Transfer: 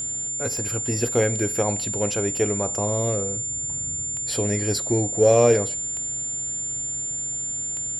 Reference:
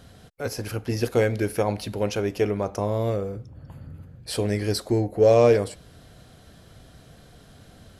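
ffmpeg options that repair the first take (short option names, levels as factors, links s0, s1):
-af "adeclick=t=4,bandreject=f=128.1:t=h:w=4,bandreject=f=256.2:t=h:w=4,bandreject=f=384.3:t=h:w=4,bandreject=f=7200:w=30"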